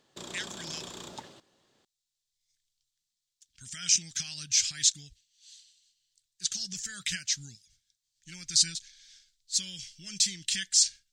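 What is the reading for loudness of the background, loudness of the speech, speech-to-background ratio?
−43.0 LKFS, −27.5 LKFS, 15.5 dB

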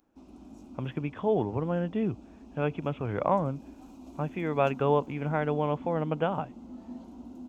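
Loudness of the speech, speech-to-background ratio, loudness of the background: −30.0 LKFS, 17.0 dB, −47.0 LKFS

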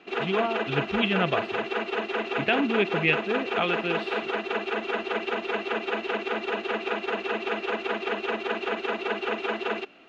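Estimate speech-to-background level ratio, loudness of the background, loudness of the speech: 1.5 dB, −29.0 LKFS, −27.5 LKFS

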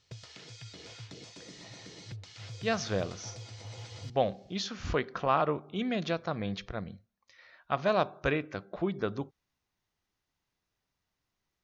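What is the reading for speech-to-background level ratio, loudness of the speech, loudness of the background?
13.5 dB, −32.5 LKFS, −46.0 LKFS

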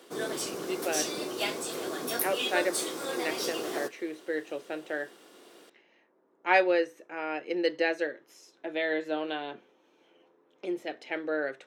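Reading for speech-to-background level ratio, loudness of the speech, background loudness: 0.5 dB, −32.0 LKFS, −32.5 LKFS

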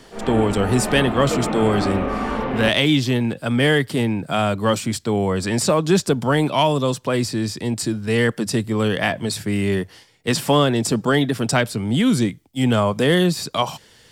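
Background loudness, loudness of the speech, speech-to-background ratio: −25.0 LKFS, −20.0 LKFS, 5.0 dB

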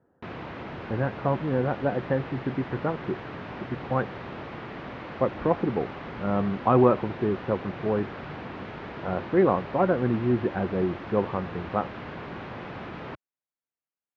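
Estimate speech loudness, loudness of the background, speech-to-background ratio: −27.0 LKFS, −38.5 LKFS, 11.5 dB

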